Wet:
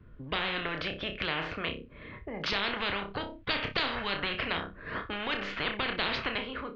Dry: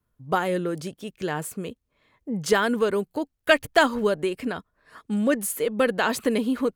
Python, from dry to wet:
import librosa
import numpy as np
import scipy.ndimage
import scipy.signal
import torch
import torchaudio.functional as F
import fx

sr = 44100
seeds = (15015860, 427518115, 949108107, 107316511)

y = fx.fade_out_tail(x, sr, length_s=0.97)
y = scipy.ndimage.gaussian_filter1d(y, 3.5, mode='constant')
y = fx.peak_eq(y, sr, hz=830.0, db=-13.5, octaves=1.0)
y = fx.room_flutter(y, sr, wall_m=5.2, rt60_s=0.22)
y = fx.spectral_comp(y, sr, ratio=10.0)
y = y * 10.0 ** (-3.0 / 20.0)